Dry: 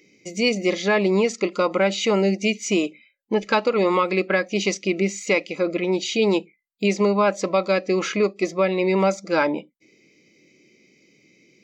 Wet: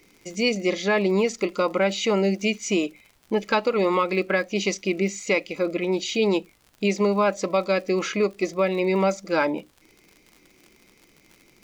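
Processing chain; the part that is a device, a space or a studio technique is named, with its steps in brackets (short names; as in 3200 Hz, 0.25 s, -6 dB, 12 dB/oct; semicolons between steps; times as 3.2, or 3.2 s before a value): vinyl LP (crackle 80/s -36 dBFS; pink noise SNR 40 dB); gain -2 dB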